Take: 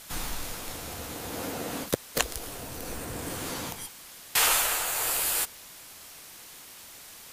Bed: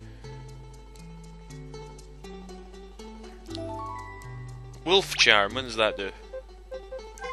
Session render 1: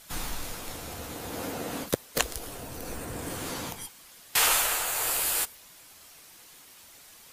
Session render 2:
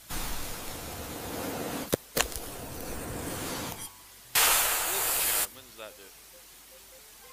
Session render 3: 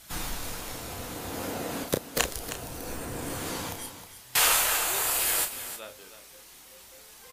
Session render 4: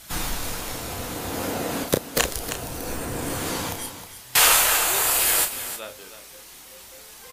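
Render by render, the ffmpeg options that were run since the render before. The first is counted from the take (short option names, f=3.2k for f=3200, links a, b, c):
-af "afftdn=nr=6:nf=-48"
-filter_complex "[1:a]volume=-20.5dB[a];[0:a][a]amix=inputs=2:normalize=0"
-filter_complex "[0:a]asplit=2[a][b];[b]adelay=32,volume=-7dB[c];[a][c]amix=inputs=2:normalize=0,asplit=2[d][e];[e]aecho=0:1:314:0.266[f];[d][f]amix=inputs=2:normalize=0"
-af "volume=6dB,alimiter=limit=-1dB:level=0:latency=1"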